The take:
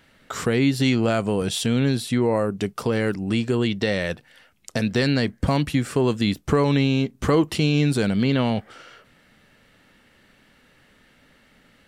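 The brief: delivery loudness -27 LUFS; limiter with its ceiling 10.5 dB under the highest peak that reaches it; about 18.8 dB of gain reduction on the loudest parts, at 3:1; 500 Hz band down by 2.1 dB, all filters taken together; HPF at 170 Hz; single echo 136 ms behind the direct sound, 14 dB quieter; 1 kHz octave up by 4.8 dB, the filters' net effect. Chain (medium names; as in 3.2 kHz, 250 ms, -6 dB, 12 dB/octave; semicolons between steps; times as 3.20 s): high-pass 170 Hz; peaking EQ 500 Hz -4 dB; peaking EQ 1 kHz +7 dB; compression 3:1, threshold -41 dBFS; peak limiter -28.5 dBFS; delay 136 ms -14 dB; trim +13.5 dB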